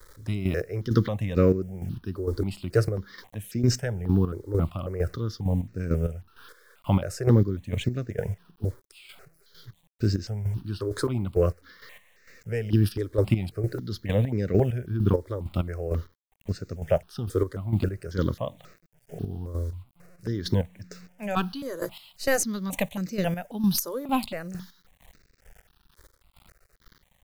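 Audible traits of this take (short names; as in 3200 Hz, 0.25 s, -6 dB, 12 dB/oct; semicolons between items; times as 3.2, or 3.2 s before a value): a quantiser's noise floor 10-bit, dither none; chopped level 2.2 Hz, depth 65%, duty 35%; notches that jump at a steady rate 3.7 Hz 730–3200 Hz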